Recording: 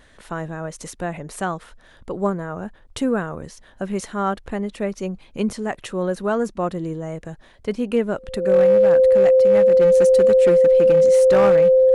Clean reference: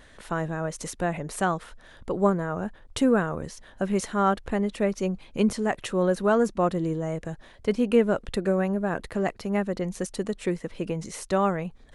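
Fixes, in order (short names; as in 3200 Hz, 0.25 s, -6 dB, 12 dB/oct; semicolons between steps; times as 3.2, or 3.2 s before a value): clip repair -9.5 dBFS; notch 520 Hz, Q 30; gain 0 dB, from 9.8 s -4 dB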